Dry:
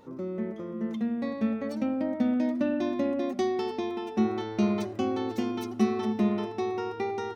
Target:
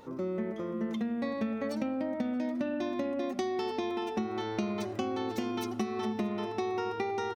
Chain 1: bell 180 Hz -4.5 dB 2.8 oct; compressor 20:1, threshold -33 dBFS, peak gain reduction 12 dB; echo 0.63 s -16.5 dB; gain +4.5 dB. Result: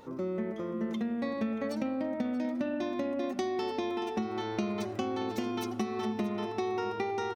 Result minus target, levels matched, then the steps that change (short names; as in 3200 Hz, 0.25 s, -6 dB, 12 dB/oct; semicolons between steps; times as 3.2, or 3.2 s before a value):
echo-to-direct +9.5 dB
change: echo 0.63 s -26 dB